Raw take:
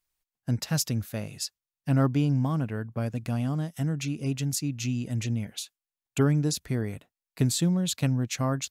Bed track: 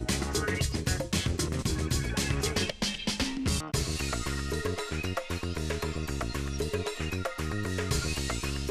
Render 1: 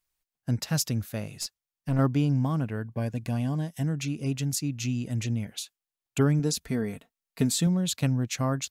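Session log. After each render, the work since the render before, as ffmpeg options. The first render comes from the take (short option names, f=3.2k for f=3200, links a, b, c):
-filter_complex "[0:a]asettb=1/sr,asplit=3[a][b][c];[a]atrim=end=1.324[d];[b]atrim=start=1.32:end=1.99,asetpts=PTS-STARTPTS,afade=t=in:d=0.004:c=qsin,afade=t=out:st=0.666:d=0.004:c=qsin,aeval=exprs='(tanh(10*val(0)+0.3)-tanh(0.3))/10':c=same[e];[c]atrim=start=1.986[f];[d][e]acrossfade=d=0.004:c1=hsin:c2=qsin[g];[g][f]acrossfade=d=0.004:c1=qsin:c2=hsin,asettb=1/sr,asplit=3[h][i][j];[h]atrim=end=2.844[k];[i]atrim=start=2.84:end=3.84,asetpts=PTS-STARTPTS,afade=t=in:d=0.004:c=qsin,afade=t=out:st=0.996:d=0.004:c=qsin,asuperstop=centerf=1300:order=20:qfactor=5.7[l];[j]atrim=start=3.836[m];[k][l]acrossfade=d=0.004:c1=hsin:c2=qsin[n];[n][m]acrossfade=d=0.004:c1=qsin:c2=hsin,asettb=1/sr,asplit=3[o][p][q];[o]atrim=end=6.394[r];[p]atrim=start=6.39:end=7.67,asetpts=PTS-STARTPTS,afade=t=in:d=0.004:c=qsin,afade=t=out:st=1.276:d=0.004:c=qsin,aecho=1:1:4.4:0.52,atrim=end_sample=56448[s];[q]atrim=start=7.666[t];[r][s]acrossfade=d=0.004:c1=hsin:c2=qsin[u];[u][t]acrossfade=d=0.004:c1=qsin:c2=hsin"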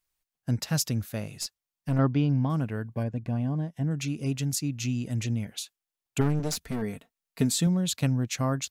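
-filter_complex "[0:a]asettb=1/sr,asplit=3[a][b][c];[a]atrim=end=1.984[d];[b]atrim=start=1.98:end=2.5,asetpts=PTS-STARTPTS,afade=t=in:d=0.004:c=qsin,afade=t=out:st=0.516:d=0.004:c=qsin,lowpass=f=4.6k:w=0.5412,lowpass=f=4.6k:w=1.3066[e];[c]atrim=start=2.496[f];[d][e]acrossfade=d=0.004:c1=hsin:c2=qsin[g];[g][f]acrossfade=d=0.004:c1=qsin:c2=hsin,asplit=3[h][i][j];[h]afade=t=out:st=3.02:d=0.02[k];[i]lowpass=f=1.1k:p=1,afade=t=in:st=3.02:d=0.02,afade=t=out:st=3.9:d=0.02[l];[j]afade=t=in:st=3.9:d=0.02[m];[k][l][m]amix=inputs=3:normalize=0,asplit=3[n][o][p];[n]afade=t=out:st=6.2:d=0.02[q];[o]aeval=exprs='clip(val(0),-1,0.0266)':c=same,afade=t=in:st=6.2:d=0.02,afade=t=out:st=6.81:d=0.02[r];[p]afade=t=in:st=6.81:d=0.02[s];[q][r][s]amix=inputs=3:normalize=0"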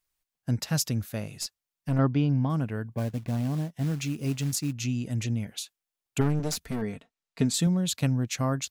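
-filter_complex "[0:a]asplit=3[a][b][c];[a]afade=t=out:st=2.97:d=0.02[d];[b]acrusher=bits=5:mode=log:mix=0:aa=0.000001,afade=t=in:st=2.97:d=0.02,afade=t=out:st=4.71:d=0.02[e];[c]afade=t=in:st=4.71:d=0.02[f];[d][e][f]amix=inputs=3:normalize=0,asettb=1/sr,asplit=3[g][h][i];[g]atrim=end=6.814[j];[h]atrim=start=6.81:end=7.54,asetpts=PTS-STARTPTS,afade=t=in:d=0.004:c=qsin,afade=t=out:st=0.726:d=0.004:c=qsin,lowpass=6.8k[k];[i]atrim=start=7.536[l];[j][k]acrossfade=d=0.004:c1=hsin:c2=qsin[m];[m][l]acrossfade=d=0.004:c1=qsin:c2=hsin"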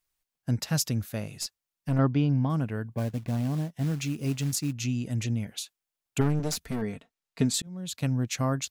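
-filter_complex "[0:a]asplit=2[a][b];[a]atrim=end=7.62,asetpts=PTS-STARTPTS,afade=t=out:st=7.616:d=0.004:c=hsin[c];[b]atrim=start=7.62,asetpts=PTS-STARTPTS,afade=t=in:d=0.59[d];[c][d]concat=n=2:v=0:a=1"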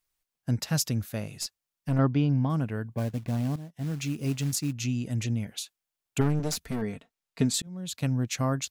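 -filter_complex "[0:a]asplit=2[a][b];[a]atrim=end=3.56,asetpts=PTS-STARTPTS,afade=t=out:st=3.556:d=0.004:c=hsin:silence=0.211349[c];[b]atrim=start=3.56,asetpts=PTS-STARTPTS,afade=t=in:d=0.54:silence=0.211349[d];[c][d]concat=n=2:v=0:a=1"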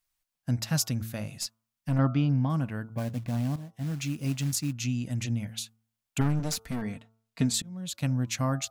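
-af "equalizer=f=410:t=o:w=0.44:g=-9,bandreject=f=111.7:t=h:w=4,bandreject=f=223.4:t=h:w=4,bandreject=f=335.1:t=h:w=4,bandreject=f=446.8:t=h:w=4,bandreject=f=558.5:t=h:w=4,bandreject=f=670.2:t=h:w=4,bandreject=f=781.9:t=h:w=4,bandreject=f=893.6:t=h:w=4,bandreject=f=1.0053k:t=h:w=4,bandreject=f=1.117k:t=h:w=4,bandreject=f=1.2287k:t=h:w=4,bandreject=f=1.3404k:t=h:w=4,bandreject=f=1.4521k:t=h:w=4"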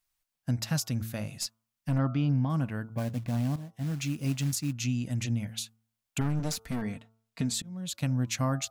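-af "alimiter=limit=-20dB:level=0:latency=1:release=153"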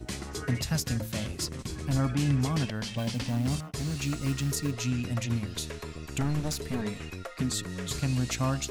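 -filter_complex "[1:a]volume=-7dB[a];[0:a][a]amix=inputs=2:normalize=0"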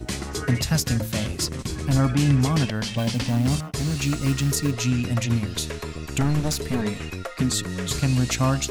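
-af "volume=7dB"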